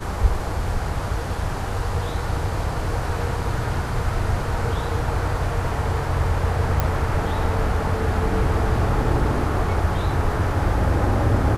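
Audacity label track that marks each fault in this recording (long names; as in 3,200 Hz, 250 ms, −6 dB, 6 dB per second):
6.800000	6.800000	click −7 dBFS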